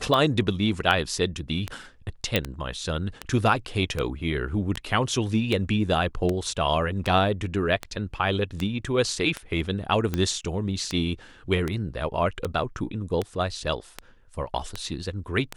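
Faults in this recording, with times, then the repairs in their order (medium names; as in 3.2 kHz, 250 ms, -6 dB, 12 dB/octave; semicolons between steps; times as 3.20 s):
tick 78 rpm -13 dBFS
2.36 s: pop -7 dBFS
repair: de-click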